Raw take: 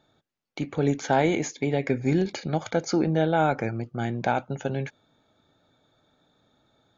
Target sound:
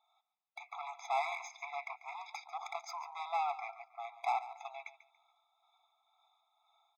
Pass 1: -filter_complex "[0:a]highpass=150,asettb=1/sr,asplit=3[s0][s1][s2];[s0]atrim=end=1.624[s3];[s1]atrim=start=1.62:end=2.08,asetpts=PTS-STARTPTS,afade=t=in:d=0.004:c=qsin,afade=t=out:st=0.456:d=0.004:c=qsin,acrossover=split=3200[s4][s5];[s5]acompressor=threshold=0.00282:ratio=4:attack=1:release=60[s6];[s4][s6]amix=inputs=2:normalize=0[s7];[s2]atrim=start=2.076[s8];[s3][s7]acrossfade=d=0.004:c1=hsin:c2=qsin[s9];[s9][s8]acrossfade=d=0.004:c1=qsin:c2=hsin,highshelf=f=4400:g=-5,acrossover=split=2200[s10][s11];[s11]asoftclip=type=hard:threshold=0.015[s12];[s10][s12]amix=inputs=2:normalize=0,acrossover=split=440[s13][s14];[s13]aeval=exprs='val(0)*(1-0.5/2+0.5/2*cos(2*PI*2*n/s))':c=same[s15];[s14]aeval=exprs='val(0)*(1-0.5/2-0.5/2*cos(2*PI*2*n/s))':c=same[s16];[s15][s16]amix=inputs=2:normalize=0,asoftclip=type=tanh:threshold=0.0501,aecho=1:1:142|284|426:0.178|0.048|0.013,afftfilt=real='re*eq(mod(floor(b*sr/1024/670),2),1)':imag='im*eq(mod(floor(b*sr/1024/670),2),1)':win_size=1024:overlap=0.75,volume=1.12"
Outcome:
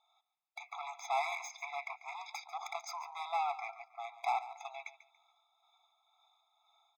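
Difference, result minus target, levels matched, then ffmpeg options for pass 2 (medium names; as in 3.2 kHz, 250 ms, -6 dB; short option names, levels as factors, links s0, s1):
8 kHz band +4.0 dB
-filter_complex "[0:a]highpass=150,asettb=1/sr,asplit=3[s0][s1][s2];[s0]atrim=end=1.624[s3];[s1]atrim=start=1.62:end=2.08,asetpts=PTS-STARTPTS,afade=t=in:d=0.004:c=qsin,afade=t=out:st=0.456:d=0.004:c=qsin,acrossover=split=3200[s4][s5];[s5]acompressor=threshold=0.00282:ratio=4:attack=1:release=60[s6];[s4][s6]amix=inputs=2:normalize=0[s7];[s2]atrim=start=2.076[s8];[s3][s7]acrossfade=d=0.004:c1=hsin:c2=qsin[s9];[s9][s8]acrossfade=d=0.004:c1=qsin:c2=hsin,highshelf=f=4400:g=-14.5,acrossover=split=2200[s10][s11];[s11]asoftclip=type=hard:threshold=0.015[s12];[s10][s12]amix=inputs=2:normalize=0,acrossover=split=440[s13][s14];[s13]aeval=exprs='val(0)*(1-0.5/2+0.5/2*cos(2*PI*2*n/s))':c=same[s15];[s14]aeval=exprs='val(0)*(1-0.5/2-0.5/2*cos(2*PI*2*n/s))':c=same[s16];[s15][s16]amix=inputs=2:normalize=0,asoftclip=type=tanh:threshold=0.0501,aecho=1:1:142|284|426:0.178|0.048|0.013,afftfilt=real='re*eq(mod(floor(b*sr/1024/670),2),1)':imag='im*eq(mod(floor(b*sr/1024/670),2),1)':win_size=1024:overlap=0.75,volume=1.12"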